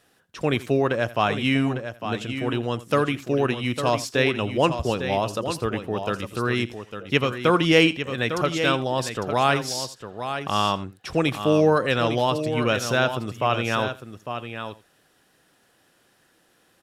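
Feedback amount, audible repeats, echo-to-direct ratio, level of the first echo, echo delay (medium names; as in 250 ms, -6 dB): no regular repeats, 3, -8.5 dB, -18.0 dB, 84 ms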